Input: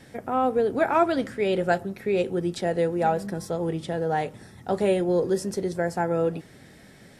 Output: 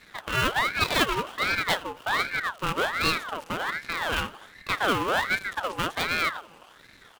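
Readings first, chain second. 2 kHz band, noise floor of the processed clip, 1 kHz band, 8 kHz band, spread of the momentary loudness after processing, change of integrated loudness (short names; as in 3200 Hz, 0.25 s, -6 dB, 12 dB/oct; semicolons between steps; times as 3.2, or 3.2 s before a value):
+9.5 dB, -53 dBFS, 0.0 dB, +4.5 dB, 7 LU, -1.0 dB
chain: switching dead time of 0.27 ms; bell 2100 Hz +11.5 dB 0.51 oct; on a send: feedback echo 85 ms, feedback 51%, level -21.5 dB; on the sum: ring modulator with a swept carrier 1300 Hz, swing 50%, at 1.3 Hz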